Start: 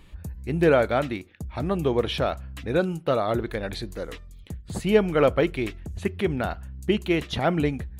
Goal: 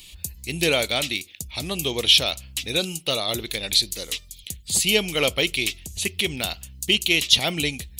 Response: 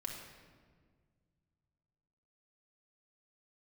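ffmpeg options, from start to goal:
-af "aexciter=amount=10.6:drive=7.7:freq=2400,volume=-5dB"

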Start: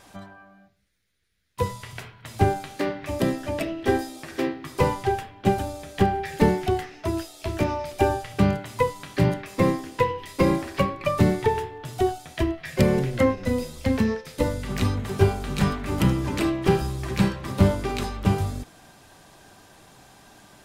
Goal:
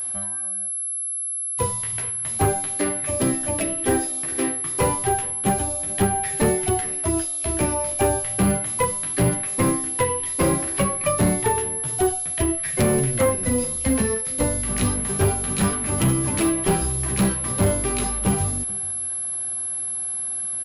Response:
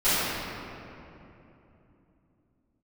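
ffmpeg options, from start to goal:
-af "flanger=delay=8.4:depth=9:regen=-29:speed=0.31:shape=sinusoidal,aeval=exprs='val(0)+0.0282*sin(2*PI*11000*n/s)':channel_layout=same,asoftclip=type=hard:threshold=-19.5dB,aecho=1:1:431:0.0794,volume=5.5dB"

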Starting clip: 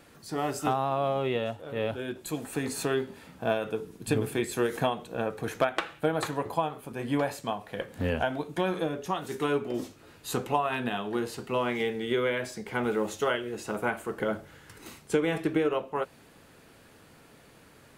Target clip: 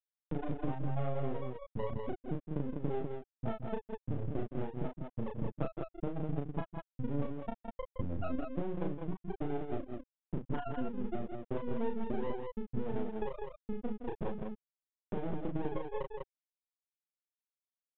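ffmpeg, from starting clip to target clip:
ffmpeg -i in.wav -filter_complex "[0:a]equalizer=frequency=130:width=0.38:gain=12.5,afftfilt=real='re*gte(hypot(re,im),0.501)':imag='im*gte(hypot(re,im),0.501)':win_size=1024:overlap=0.75,acompressor=mode=upward:threshold=-33dB:ratio=2.5,alimiter=limit=-16dB:level=0:latency=1:release=149,acompressor=threshold=-34dB:ratio=20,aeval=exprs='max(val(0),0)':channel_layout=same,asplit=2[link_01][link_02];[link_02]aecho=0:1:34.99|166.2|198.3:0.631|0.316|0.631[link_03];[link_01][link_03]amix=inputs=2:normalize=0,aresample=8000,aresample=44100,adynamicequalizer=threshold=0.00126:dfrequency=2000:dqfactor=0.7:tfrequency=2000:tqfactor=0.7:attack=5:release=100:ratio=0.375:range=2:mode=boostabove:tftype=highshelf,volume=3dB" out.wav

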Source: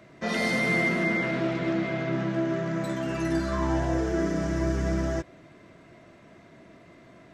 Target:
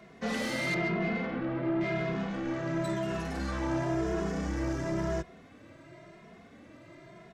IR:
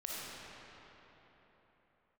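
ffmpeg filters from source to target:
-filter_complex "[0:a]asettb=1/sr,asplit=3[link_01][link_02][link_03];[link_01]atrim=end=0.744[link_04];[link_02]atrim=start=0.74:end=1.81,asetpts=PTS-STARTPTS,afade=type=in:duration=0.004:curve=qsin,afade=type=out:start_time=1.066:duration=0.004:curve=qsin,lowpass=1500[link_05];[link_03]atrim=start=1.806[link_06];[link_04][link_05]acrossfade=duration=0.004:curve1=hsin:curve2=qsin[link_07];[link_07][link_06]acrossfade=duration=0.004:curve1=qsin:curve2=hsin,asoftclip=type=tanh:threshold=-26.5dB,asplit=2[link_08][link_09];[link_09]adelay=2.4,afreqshift=0.96[link_10];[link_08][link_10]amix=inputs=2:normalize=1,volume=2.5dB"

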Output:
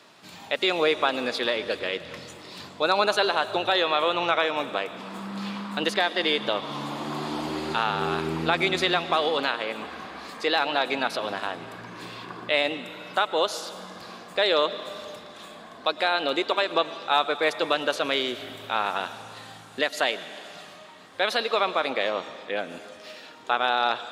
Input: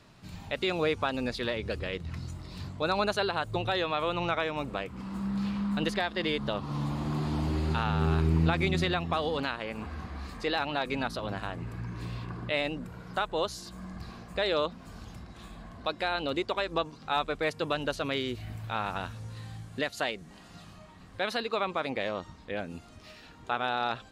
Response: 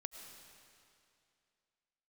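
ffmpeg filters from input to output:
-filter_complex "[0:a]highpass=360,asplit=2[link_01][link_02];[link_02]equalizer=frequency=3400:width=5.8:gain=8[link_03];[1:a]atrim=start_sample=2205[link_04];[link_03][link_04]afir=irnorm=-1:irlink=0,volume=0.5dB[link_05];[link_01][link_05]amix=inputs=2:normalize=0,volume=2.5dB"

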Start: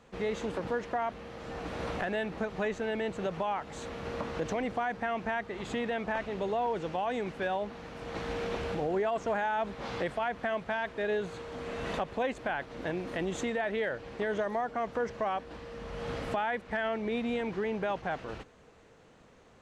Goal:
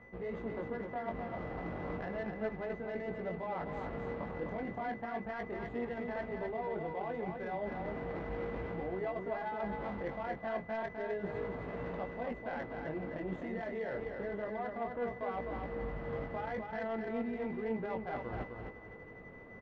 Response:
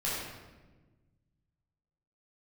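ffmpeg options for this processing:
-af "areverse,acompressor=threshold=-42dB:ratio=8,areverse,aeval=exprs='val(0)+0.00224*sin(2*PI*2000*n/s)':channel_layout=same,flanger=delay=16.5:depth=6.1:speed=0.33,adynamicsmooth=sensitivity=4.5:basefreq=1100,aecho=1:1:256|512|768|1024:0.562|0.169|0.0506|0.0152,volume=9dB"

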